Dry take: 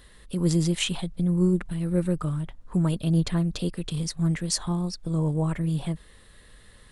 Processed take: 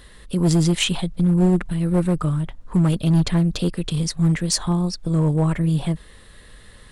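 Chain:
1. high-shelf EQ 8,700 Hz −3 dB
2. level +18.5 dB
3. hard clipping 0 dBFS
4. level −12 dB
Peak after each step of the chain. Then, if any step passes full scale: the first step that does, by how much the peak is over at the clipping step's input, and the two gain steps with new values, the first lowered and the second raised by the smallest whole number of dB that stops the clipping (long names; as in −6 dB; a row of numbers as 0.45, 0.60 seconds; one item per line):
−11.0, +7.5, 0.0, −12.0 dBFS
step 2, 7.5 dB
step 2 +10.5 dB, step 4 −4 dB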